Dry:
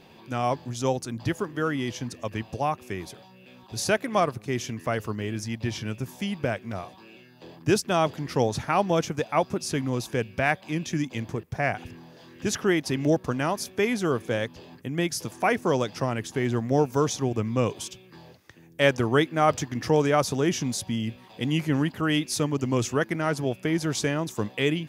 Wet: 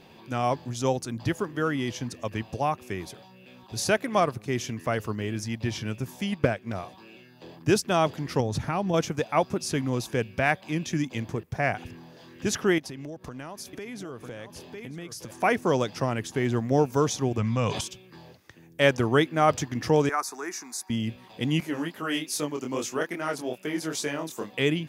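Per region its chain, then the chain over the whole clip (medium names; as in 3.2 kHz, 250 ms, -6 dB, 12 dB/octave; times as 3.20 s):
6.32–6.73 s: transient shaper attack +6 dB, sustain -5 dB + loudspeaker Doppler distortion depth 0.12 ms
8.40–8.94 s: bass shelf 250 Hz +11 dB + compression 2.5:1, threshold -26 dBFS
12.78–15.31 s: delay 950 ms -14 dB + compression 8:1, threshold -35 dBFS
17.38–17.81 s: low-pass 7.7 kHz + peaking EQ 350 Hz -13 dB 0.79 oct + level flattener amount 70%
20.09–20.90 s: high-pass 390 Hz 24 dB/octave + static phaser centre 1.3 kHz, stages 4
21.60–24.53 s: high-pass 260 Hz + treble shelf 11 kHz +9 dB + chorus 2.4 Hz, delay 20 ms, depth 5.2 ms
whole clip: none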